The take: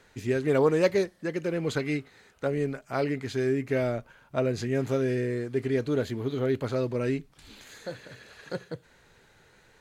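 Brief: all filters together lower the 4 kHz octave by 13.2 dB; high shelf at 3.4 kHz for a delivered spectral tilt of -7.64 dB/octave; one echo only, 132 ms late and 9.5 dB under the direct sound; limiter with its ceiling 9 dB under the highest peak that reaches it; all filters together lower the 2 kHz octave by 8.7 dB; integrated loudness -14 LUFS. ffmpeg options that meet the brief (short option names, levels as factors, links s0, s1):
-af "equalizer=f=2000:t=o:g=-7,highshelf=f=3400:g=-9,equalizer=f=4000:t=o:g=-8,alimiter=limit=0.0794:level=0:latency=1,aecho=1:1:132:0.335,volume=7.5"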